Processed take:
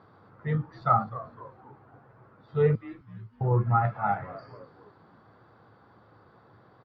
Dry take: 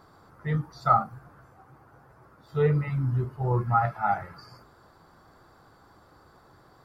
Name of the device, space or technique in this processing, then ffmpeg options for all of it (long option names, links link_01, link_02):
frequency-shifting delay pedal into a guitar cabinet: -filter_complex "[0:a]asettb=1/sr,asplit=3[link_01][link_02][link_03];[link_01]atrim=end=2.754[link_04];[link_02]atrim=start=2.75:end=3.41,asetpts=PTS-STARTPTS,afade=type=in:duration=0.004:curve=qsin,afade=type=out:start_time=0.656:duration=0.004:curve=qsin,aderivative[link_05];[link_03]atrim=start=3.406[link_06];[link_04][link_05]acrossfade=duration=0.004:curve1=hsin:curve2=qsin[link_07];[link_07][link_06]acrossfade=duration=0.004:curve1=qsin:curve2=hsin,asplit=5[link_08][link_09][link_10][link_11][link_12];[link_09]adelay=254,afreqshift=-130,volume=-16.5dB[link_13];[link_10]adelay=508,afreqshift=-260,volume=-24dB[link_14];[link_11]adelay=762,afreqshift=-390,volume=-31.6dB[link_15];[link_12]adelay=1016,afreqshift=-520,volume=-39.1dB[link_16];[link_08][link_13][link_14][link_15][link_16]amix=inputs=5:normalize=0,highpass=98,equalizer=frequency=110:width_type=q:width=4:gain=9,equalizer=frequency=210:width_type=q:width=4:gain=5,equalizer=frequency=480:width_type=q:width=4:gain=4,lowpass=frequency=3700:width=0.5412,lowpass=frequency=3700:width=1.3066,volume=-2dB"